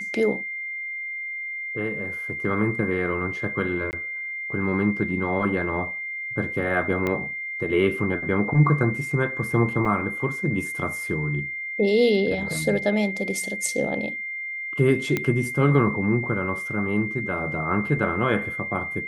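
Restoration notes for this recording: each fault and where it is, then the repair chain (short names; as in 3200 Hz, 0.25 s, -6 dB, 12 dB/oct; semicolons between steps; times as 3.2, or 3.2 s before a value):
tone 2100 Hz -29 dBFS
3.91–3.93 gap 19 ms
7.07 pop -13 dBFS
9.85 gap 4.8 ms
15.17 pop -10 dBFS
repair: de-click; notch 2100 Hz, Q 30; interpolate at 3.91, 19 ms; interpolate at 9.85, 4.8 ms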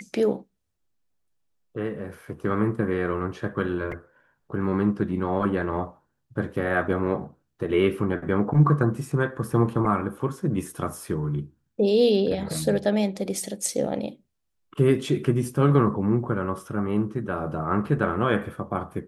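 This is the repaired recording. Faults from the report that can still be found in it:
7.07 pop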